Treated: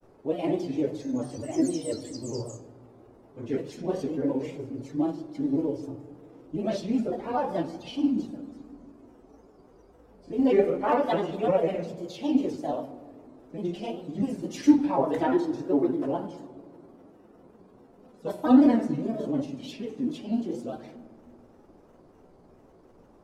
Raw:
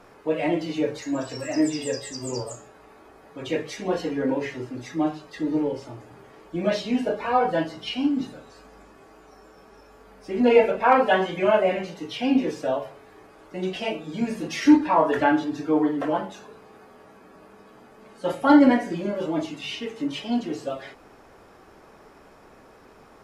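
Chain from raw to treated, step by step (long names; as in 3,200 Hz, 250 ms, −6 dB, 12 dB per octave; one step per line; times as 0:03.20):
granular cloud, spray 18 ms, pitch spread up and down by 3 semitones
parametric band 1,800 Hz −12.5 dB 2.3 octaves
on a send at −12 dB: convolution reverb RT60 2.0 s, pre-delay 3 ms
on the sum: one half of a high-frequency compander decoder only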